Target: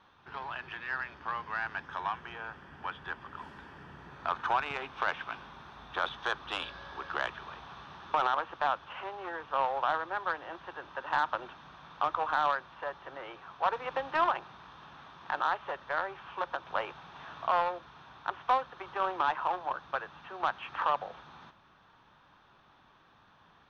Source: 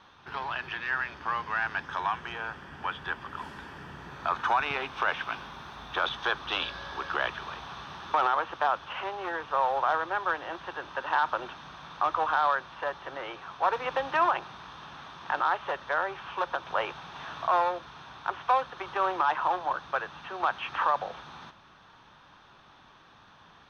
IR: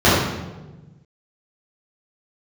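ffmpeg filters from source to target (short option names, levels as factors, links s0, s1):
-af "aeval=exprs='0.2*(cos(1*acos(clip(val(0)/0.2,-1,1)))-cos(1*PI/2))+0.0282*(cos(3*acos(clip(val(0)/0.2,-1,1)))-cos(3*PI/2))':c=same,aemphasis=mode=reproduction:type=cd,volume=0.891"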